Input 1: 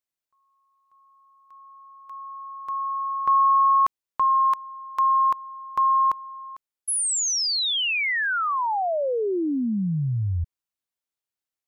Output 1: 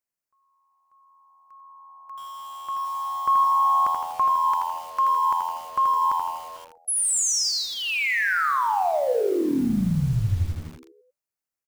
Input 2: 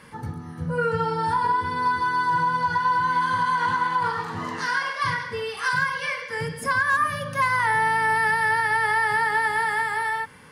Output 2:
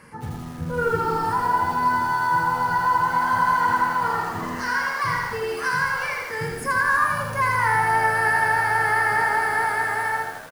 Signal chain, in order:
parametric band 3,500 Hz −14 dB 0.36 octaves
echo with shifted repeats 94 ms, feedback 61%, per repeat −84 Hz, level −12.5 dB
feedback echo at a low word length 81 ms, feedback 55%, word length 7 bits, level −4 dB

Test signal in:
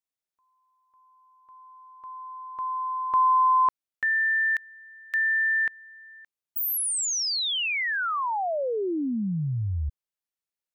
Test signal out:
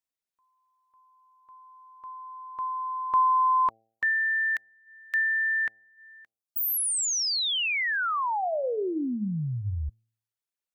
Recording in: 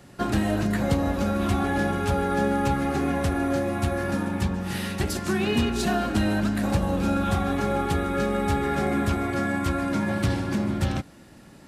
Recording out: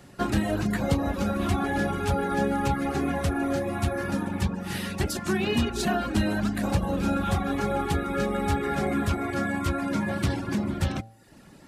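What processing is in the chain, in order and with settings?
reverb reduction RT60 0.64 s
hum removal 112.1 Hz, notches 7

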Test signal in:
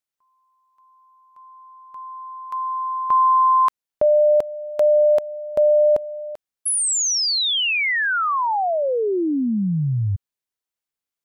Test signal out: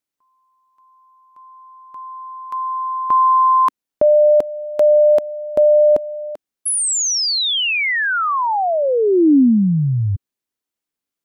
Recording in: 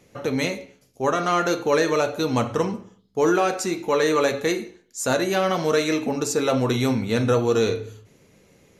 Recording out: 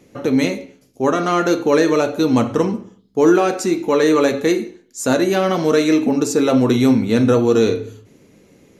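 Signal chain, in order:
parametric band 280 Hz +8.5 dB 1.1 octaves
level +2 dB

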